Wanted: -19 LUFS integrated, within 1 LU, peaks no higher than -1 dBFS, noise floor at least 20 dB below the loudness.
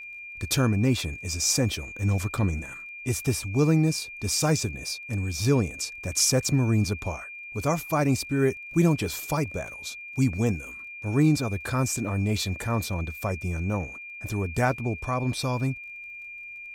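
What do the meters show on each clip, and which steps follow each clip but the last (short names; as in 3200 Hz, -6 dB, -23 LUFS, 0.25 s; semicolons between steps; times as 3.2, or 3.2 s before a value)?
ticks 22/s; steady tone 2400 Hz; tone level -38 dBFS; loudness -26.5 LUFS; peak -10.0 dBFS; loudness target -19.0 LUFS
-> de-click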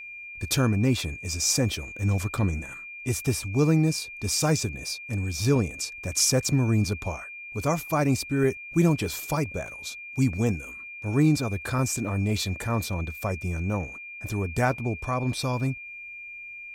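ticks 0.24/s; steady tone 2400 Hz; tone level -38 dBFS
-> notch 2400 Hz, Q 30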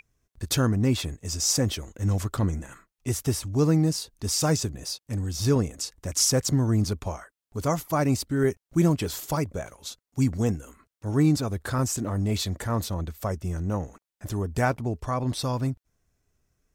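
steady tone none; loudness -26.5 LUFS; peak -10.5 dBFS; loudness target -19.0 LUFS
-> gain +7.5 dB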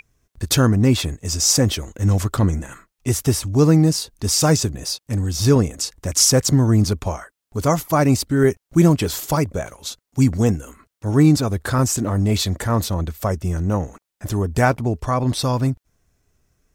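loudness -19.0 LUFS; peak -3.0 dBFS; noise floor -82 dBFS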